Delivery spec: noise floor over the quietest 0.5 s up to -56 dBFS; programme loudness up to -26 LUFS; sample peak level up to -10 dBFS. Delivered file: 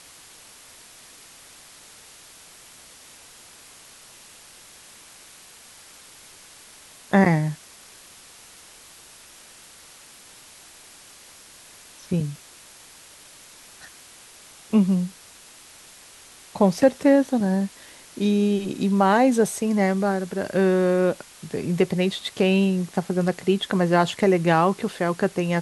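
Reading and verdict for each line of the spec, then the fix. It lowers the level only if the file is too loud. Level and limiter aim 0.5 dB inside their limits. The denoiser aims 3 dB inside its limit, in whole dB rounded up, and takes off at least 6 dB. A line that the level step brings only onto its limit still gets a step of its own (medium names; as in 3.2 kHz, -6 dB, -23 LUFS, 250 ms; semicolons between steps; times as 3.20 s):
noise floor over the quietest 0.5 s -48 dBFS: fail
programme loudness -22.0 LUFS: fail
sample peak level -5.5 dBFS: fail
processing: noise reduction 7 dB, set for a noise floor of -48 dBFS; trim -4.5 dB; peak limiter -10.5 dBFS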